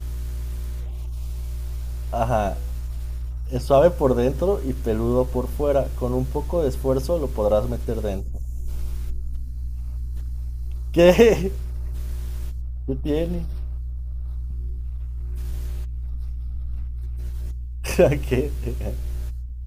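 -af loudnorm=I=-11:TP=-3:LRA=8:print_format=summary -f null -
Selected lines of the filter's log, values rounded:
Input Integrated:    -24.8 LUFS
Input True Peak:      -1.5 dBTP
Input LRA:             8.0 LU
Input Threshold:     -34.8 LUFS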